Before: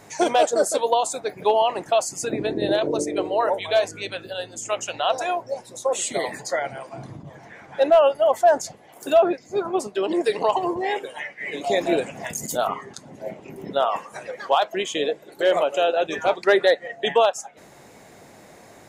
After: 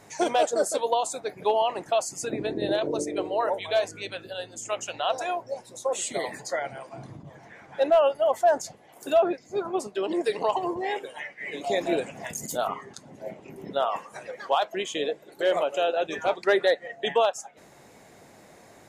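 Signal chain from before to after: trim -4 dB; MP3 96 kbps 32 kHz

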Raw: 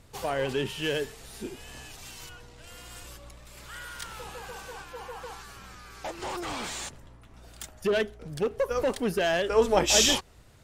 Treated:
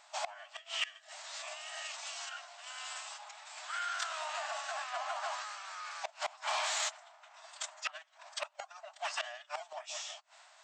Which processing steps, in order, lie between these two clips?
in parallel at -9.5 dB: decimation with a swept rate 10×, swing 160% 2 Hz; on the sum: formant-preserving pitch shift -5.5 st; brick-wall FIR band-pass 590–8400 Hz; inverted gate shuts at -24 dBFS, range -24 dB; transformer saturation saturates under 2.1 kHz; trim +3.5 dB

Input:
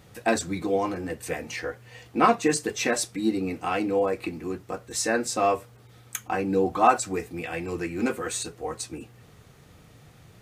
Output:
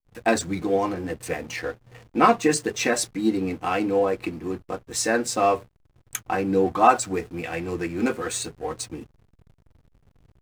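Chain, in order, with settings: hysteresis with a dead band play -39 dBFS; trim +2.5 dB

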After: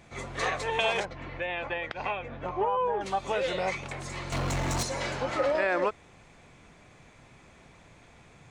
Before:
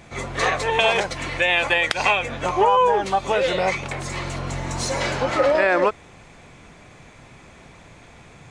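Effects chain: 1.05–3.01 s: tape spacing loss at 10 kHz 32 dB; 4.32–4.83 s: waveshaping leveller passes 3; trim -8.5 dB

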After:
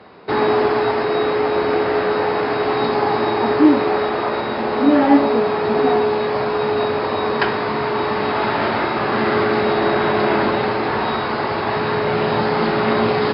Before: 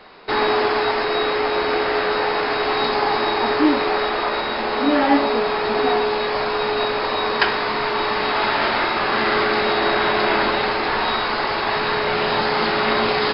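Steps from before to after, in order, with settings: high-pass 87 Hz 24 dB/octave; tilt EQ -3 dB/octave

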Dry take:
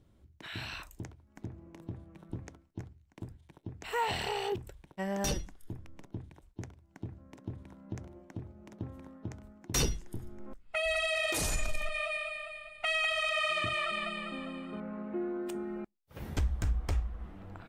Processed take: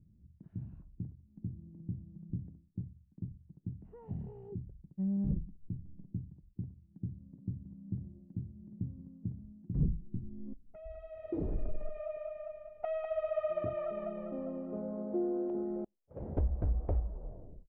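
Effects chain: tape stop on the ending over 0.64 s; Gaussian low-pass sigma 1.6 samples; low-pass sweep 180 Hz -> 580 Hz, 9.93–12.45 s; trim -1 dB

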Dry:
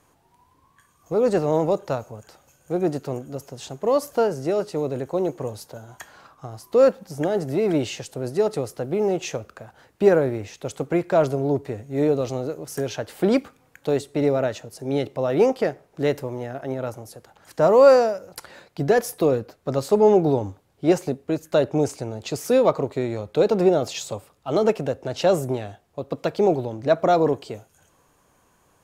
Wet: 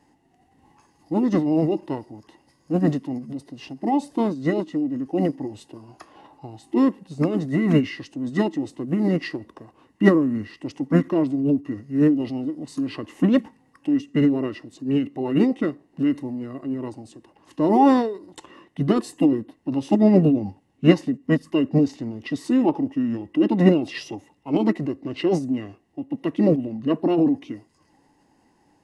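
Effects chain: small resonant body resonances 310/1100/2600/3700 Hz, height 16 dB, ringing for 25 ms; formant shift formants -5 st; trim -8 dB

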